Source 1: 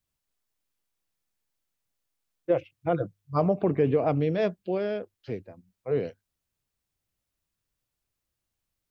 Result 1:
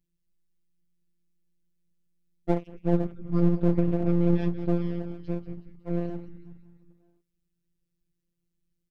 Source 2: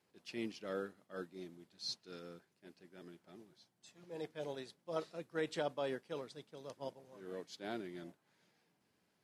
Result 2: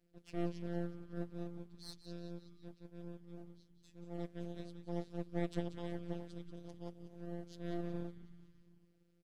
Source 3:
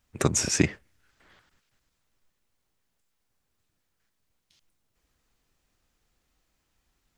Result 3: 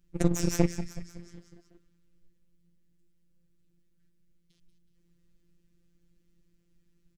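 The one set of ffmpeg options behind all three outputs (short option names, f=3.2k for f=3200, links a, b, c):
-filter_complex "[0:a]firequalizer=gain_entry='entry(280,0);entry(700,-26);entry(1100,-23);entry(1700,-17)':delay=0.05:min_phase=1,asplit=2[a][b];[b]aeval=exprs='1.06*sin(PI/2*5.01*val(0)/1.06)':c=same,volume=-7dB[c];[a][c]amix=inputs=2:normalize=0,acompressor=threshold=-15dB:ratio=2.5,asplit=7[d][e][f][g][h][i][j];[e]adelay=185,afreqshift=-86,volume=-11dB[k];[f]adelay=370,afreqshift=-172,volume=-16.4dB[l];[g]adelay=555,afreqshift=-258,volume=-21.7dB[m];[h]adelay=740,afreqshift=-344,volume=-27.1dB[n];[i]adelay=925,afreqshift=-430,volume=-32.4dB[o];[j]adelay=1110,afreqshift=-516,volume=-37.8dB[p];[d][k][l][m][n][o][p]amix=inputs=7:normalize=0,afftfilt=real='hypot(re,im)*cos(PI*b)':imag='0':win_size=1024:overlap=0.75,aeval=exprs='max(val(0),0)':c=same"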